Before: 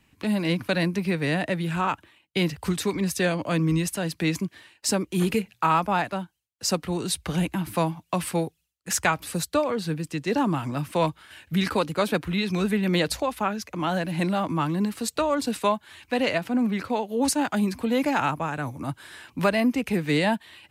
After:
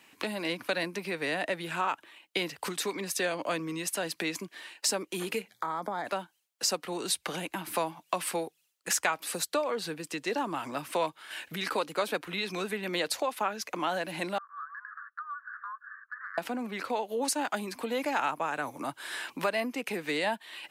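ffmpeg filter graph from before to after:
-filter_complex "[0:a]asettb=1/sr,asplit=3[s0][s1][s2];[s0]atrim=end=5.504[s3];[s1]atrim=start=5.5:end=6.07,asetpts=PTS-STARTPTS,afade=t=in:d=0.004:c=qsin,afade=t=out:st=0.566:d=0.004:c=qsin,acompressor=threshold=0.02:ratio=6:attack=3.2:release=140:knee=1:detection=peak,asuperstop=centerf=2700:order=8:qfactor=3.2,equalizer=f=160:w=0.33:g=9[s4];[s2]atrim=start=6.066[s5];[s3][s4]acrossfade=d=0.004:c1=hsin:c2=qsin[s6];[s6][s5]acrossfade=d=0.004:c1=qsin:c2=hsin,asettb=1/sr,asplit=3[s7][s8][s9];[s7]atrim=end=14.384[s10];[s8]atrim=start=14.38:end=16.38,asetpts=PTS-STARTPTS,afade=t=in:d=0.004:c=qsin,afade=t=out:st=1.996:d=0.004:c=qsin,asuperpass=centerf=1400:order=12:qfactor=2.3,acompressor=threshold=0.00631:ratio=6:attack=3.2:release=140:knee=1:detection=peak[s11];[s9]atrim=start=16.376[s12];[s10][s11]acrossfade=d=0.004:c1=hsin:c2=qsin[s13];[s13][s12]acrossfade=d=0.004:c1=qsin:c2=hsin,acompressor=threshold=0.0126:ratio=2.5,highpass=400,volume=2.37"

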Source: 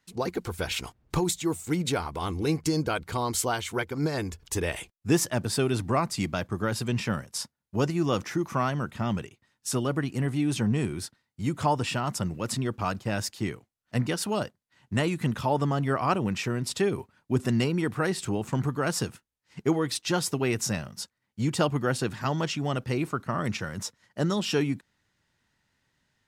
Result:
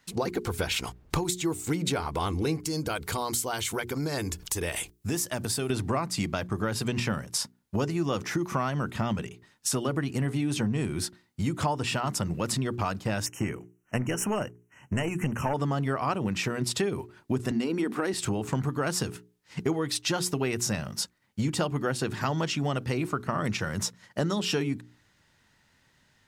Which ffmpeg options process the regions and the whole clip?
-filter_complex "[0:a]asettb=1/sr,asplit=3[s0][s1][s2];[s0]atrim=end=2.594[s3];[s1]atrim=start=2.59:end=5.7,asetpts=PTS-STARTPTS,afade=t=in:d=0.004:c=qsin,afade=t=out:st=3.106:d=0.004:c=qsin,highshelf=f=5800:g=10.5,acompressor=threshold=0.0112:ratio=2:attack=3.2:release=140:knee=1:detection=peak[s4];[s2]atrim=start=5.696[s5];[s3][s4]acrossfade=d=0.004:c1=hsin:c2=qsin[s6];[s6][s5]acrossfade=d=0.004:c1=qsin:c2=hsin,asettb=1/sr,asplit=3[s7][s8][s9];[s7]atrim=end=13.264[s10];[s8]atrim=start=13.26:end=15.54,asetpts=PTS-STARTPTS,afade=t=in:d=0.004:c=qsin,afade=t=out:st=2.276:d=0.004:c=qsin,aeval=exprs='clip(val(0),-1,0.0422)':c=same,asuperstop=centerf=4100:order=20:qfactor=1.7[s11];[s9]atrim=start=15.536[s12];[s10][s11]acrossfade=d=0.004:c1=hsin:c2=qsin[s13];[s13][s12]acrossfade=d=0.004:c1=qsin:c2=hsin,asettb=1/sr,asplit=3[s14][s15][s16];[s14]atrim=end=17.514[s17];[s15]atrim=start=17.51:end=18.14,asetpts=PTS-STARTPTS,afade=t=in:d=0.004:c=qsin,afade=t=out:st=0.626:d=0.004:c=qsin,lowshelf=f=170:t=q:w=3:g=-13,acompressor=threshold=0.0631:ratio=3:attack=3.2:release=140:knee=1:detection=peak[s18];[s16]atrim=start=18.136[s19];[s17][s18]acrossfade=d=0.004:c1=hsin:c2=qsin[s20];[s20][s19]acrossfade=d=0.004:c1=qsin:c2=hsin,bandreject=f=60:t=h:w=6,bandreject=f=120:t=h:w=6,bandreject=f=180:t=h:w=6,bandreject=f=240:t=h:w=6,bandreject=f=300:t=h:w=6,bandreject=f=360:t=h:w=6,bandreject=f=420:t=h:w=6,acompressor=threshold=0.0178:ratio=4,volume=2.66"

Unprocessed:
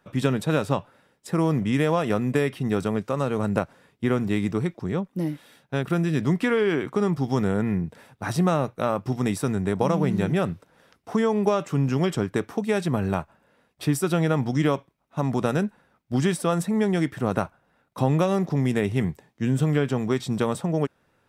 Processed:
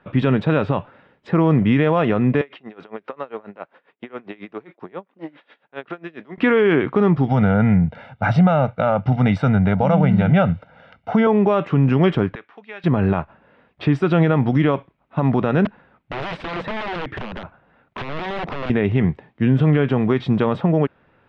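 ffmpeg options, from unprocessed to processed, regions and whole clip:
-filter_complex "[0:a]asettb=1/sr,asplit=3[s0][s1][s2];[s0]atrim=end=2.414[s3];[s1]atrim=start=2.41:end=6.38,asetpts=PTS-STARTPTS,afade=t=in:d=0.004:c=qsin,afade=t=out:st=3.966:d=0.004:c=qsin,acompressor=threshold=0.0501:ratio=6:attack=3.2:release=140:knee=1:detection=peak,highpass=410,lowpass=6600,aeval=exprs='val(0)*pow(10,-23*(0.5-0.5*cos(2*PI*7.4*n/s))/20)':c=same[s4];[s2]atrim=start=6.376[s5];[s3][s4]acrossfade=d=0.004:c1=hsin:c2=qsin[s6];[s6][s5]acrossfade=d=0.004:c1=qsin:c2=hsin,asettb=1/sr,asplit=3[s7][s8][s9];[s7]atrim=end=7.284[s10];[s8]atrim=start=7.28:end=11.27,asetpts=PTS-STARTPTS,afade=t=in:d=0.004:c=qsin,afade=t=out:st=3.986:d=0.004:c=qsin,highpass=48,aecho=1:1:1.4:0.79,atrim=end_sample=175959[s11];[s9]atrim=start=11.266[s12];[s10][s11]acrossfade=d=0.004:c1=hsin:c2=qsin[s13];[s13][s12]acrossfade=d=0.004:c1=qsin:c2=hsin,asettb=1/sr,asplit=3[s14][s15][s16];[s14]atrim=end=12.354[s17];[s15]atrim=start=12.35:end=12.84,asetpts=PTS-STARTPTS,afade=t=in:d=0.004:c=qsin,afade=t=out:st=0.486:d=0.004:c=qsin,lowpass=2700,aderivative[s18];[s16]atrim=start=12.836[s19];[s17][s18]acrossfade=d=0.004:c1=hsin:c2=qsin[s20];[s20][s19]acrossfade=d=0.004:c1=qsin:c2=hsin,asettb=1/sr,asplit=3[s21][s22][s23];[s21]atrim=end=15.654[s24];[s22]atrim=start=15.65:end=18.7,asetpts=PTS-STARTPTS,afade=t=in:d=0.004:c=qsin,afade=t=out:st=3.046:d=0.004:c=qsin,acompressor=threshold=0.0398:ratio=12:attack=3.2:release=140:knee=1:detection=peak,aeval=exprs='(mod(29.9*val(0)+1,2)-1)/29.9':c=same[s25];[s23]atrim=start=18.696[s26];[s24][s25]acrossfade=d=0.004:c1=hsin:c2=qsin[s27];[s27][s26]acrossfade=d=0.004:c1=qsin:c2=hsin,lowpass=f=3100:w=0.5412,lowpass=f=3100:w=1.3066,alimiter=level_in=5.62:limit=0.891:release=50:level=0:latency=1,volume=0.473"

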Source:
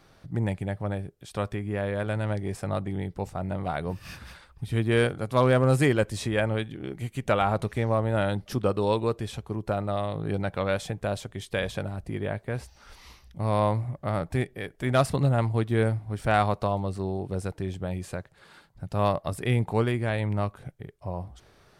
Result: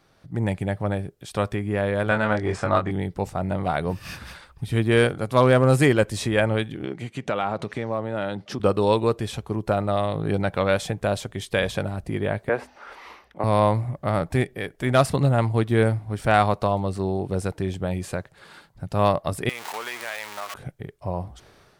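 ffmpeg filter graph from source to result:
-filter_complex "[0:a]asettb=1/sr,asplit=3[s0][s1][s2];[s0]atrim=end=2.094[s3];[s1]atrim=start=2.09:end=2.91,asetpts=PTS-STARTPTS,afade=t=in:d=0.004:c=qsin,afade=t=out:st=0.816:d=0.004:c=qsin,lowpass=f=7600:w=0.5412,lowpass=f=7600:w=1.3066,equalizer=f=1300:w=1.1:g=8.5,asplit=2[s4][s5];[s5]adelay=23,volume=0.562[s6];[s4][s6]amix=inputs=2:normalize=0,atrim=end_sample=36162[s7];[s2]atrim=start=2.906[s8];[s3][s7]acrossfade=d=0.004:c1=hsin:c2=qsin[s9];[s9][s8]acrossfade=d=0.004:c1=qsin:c2=hsin,asettb=1/sr,asplit=3[s10][s11][s12];[s10]atrim=end=6.854[s13];[s11]atrim=start=6.85:end=8.6,asetpts=PTS-STARTPTS,afade=t=in:d=0.004:c=qsin,afade=t=out:st=1.746:d=0.004:c=qsin,acompressor=threshold=0.0398:ratio=3:attack=3.2:release=140:knee=1:detection=peak,highpass=140,lowpass=6100[s14];[s12]atrim=start=8.596[s15];[s13][s14]acrossfade=d=0.004:c1=hsin:c2=qsin[s16];[s16][s15]acrossfade=d=0.004:c1=qsin:c2=hsin,asettb=1/sr,asplit=3[s17][s18][s19];[s17]atrim=end=12.494[s20];[s18]atrim=start=12.49:end=13.44,asetpts=PTS-STARTPTS,afade=t=in:d=0.004:c=qsin,afade=t=out:st=0.946:d=0.004:c=qsin,acrossover=split=290 2400:gain=0.0708 1 0.126[s21][s22][s23];[s21][s22][s23]amix=inputs=3:normalize=0,bandreject=f=50:t=h:w=6,bandreject=f=100:t=h:w=6,bandreject=f=150:t=h:w=6,bandreject=f=200:t=h:w=6,bandreject=f=250:t=h:w=6,bandreject=f=300:t=h:w=6,acontrast=73[s24];[s19]atrim=start=13.436[s25];[s20][s24]acrossfade=d=0.004:c1=hsin:c2=qsin[s26];[s26][s25]acrossfade=d=0.004:c1=qsin:c2=hsin,asettb=1/sr,asplit=3[s27][s28][s29];[s27]atrim=end=19.494[s30];[s28]atrim=start=19.49:end=20.54,asetpts=PTS-STARTPTS,afade=t=in:d=0.004:c=qsin,afade=t=out:st=1.046:d=0.004:c=qsin,aeval=exprs='val(0)+0.5*0.0422*sgn(val(0))':c=same,highpass=1000,acompressor=threshold=0.02:ratio=3:attack=3.2:release=140:knee=1:detection=peak[s31];[s29]atrim=start=20.536[s32];[s30][s31]acrossfade=d=0.004:c1=hsin:c2=qsin[s33];[s33][s32]acrossfade=d=0.004:c1=qsin:c2=hsin,lowshelf=f=85:g=-5,dynaudnorm=f=150:g=5:m=2.82,volume=0.708"

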